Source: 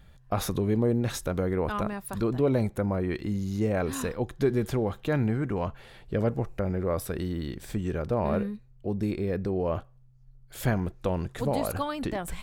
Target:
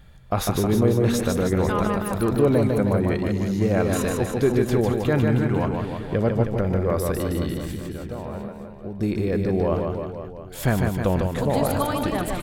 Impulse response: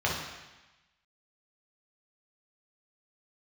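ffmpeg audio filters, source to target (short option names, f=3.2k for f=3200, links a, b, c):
-filter_complex "[0:a]asplit=3[a][b][c];[a]afade=t=out:st=7.6:d=0.02[d];[b]acompressor=threshold=-41dB:ratio=2.5,afade=t=in:st=7.6:d=0.02,afade=t=out:st=8.99:d=0.02[e];[c]afade=t=in:st=8.99:d=0.02[f];[d][e][f]amix=inputs=3:normalize=0,aecho=1:1:150|315|496.5|696.2|915.8:0.631|0.398|0.251|0.158|0.1,volume=4.5dB"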